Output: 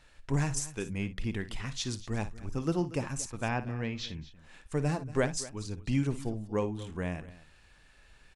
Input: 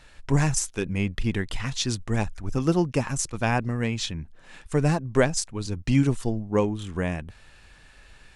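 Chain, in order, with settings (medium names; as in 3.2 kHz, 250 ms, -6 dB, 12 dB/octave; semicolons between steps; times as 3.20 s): 3.48–4.09 s: low-pass 5.5 kHz 24 dB/octave; multi-tap echo 56/235 ms -13.5/-17.5 dB; trim -8 dB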